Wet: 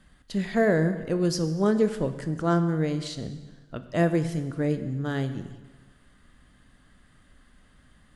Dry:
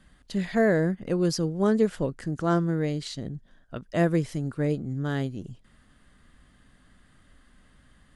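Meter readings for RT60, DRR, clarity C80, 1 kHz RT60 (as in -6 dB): 1.4 s, 9.5 dB, 12.5 dB, 1.3 s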